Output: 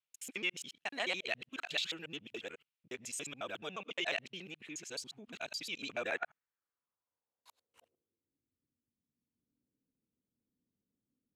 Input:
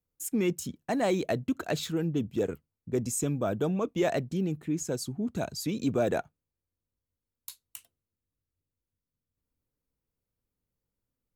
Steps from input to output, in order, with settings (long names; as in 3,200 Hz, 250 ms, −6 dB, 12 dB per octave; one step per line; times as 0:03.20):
reversed piece by piece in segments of 71 ms
band-pass filter sweep 2,800 Hz → 250 Hz, 0:05.84–0:08.57
level +7.5 dB